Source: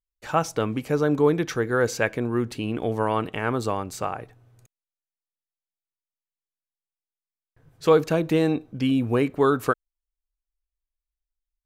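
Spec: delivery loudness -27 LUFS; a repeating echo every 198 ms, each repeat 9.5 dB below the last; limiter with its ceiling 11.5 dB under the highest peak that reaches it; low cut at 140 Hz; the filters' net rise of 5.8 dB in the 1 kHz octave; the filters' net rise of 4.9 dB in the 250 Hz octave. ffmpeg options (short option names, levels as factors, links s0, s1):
-af "highpass=140,equalizer=f=250:t=o:g=6,equalizer=f=1000:t=o:g=7,alimiter=limit=0.224:level=0:latency=1,aecho=1:1:198|396|594|792:0.335|0.111|0.0365|0.012,volume=0.75"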